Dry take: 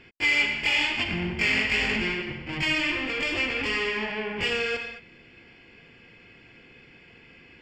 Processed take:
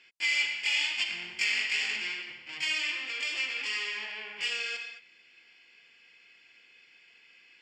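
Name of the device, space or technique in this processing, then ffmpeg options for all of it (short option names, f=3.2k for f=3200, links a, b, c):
piezo pickup straight into a mixer: -filter_complex "[0:a]asettb=1/sr,asplit=3[a][b][c];[a]atrim=end=0.984[d];[b]atrim=start=0.98:end=1.44,asetpts=PTS-STARTPTS,afade=t=in:d=0.004:c=qsin,afade=t=out:st=0.456:d=0.004:c=qsin,highshelf=f=4.2k:g=6.5[e];[c]atrim=start=1.436[f];[d][e]acrossfade=d=0.004:c1=hsin:c2=qsin[g];[g][f]acrossfade=d=0.004:c1=qsin:c2=hsin,lowpass=7.5k,aderivative,volume=4.5dB"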